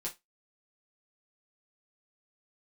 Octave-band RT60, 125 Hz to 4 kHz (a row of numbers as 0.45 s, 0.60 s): 0.15 s, 0.20 s, 0.20 s, 0.20 s, 0.20 s, 0.20 s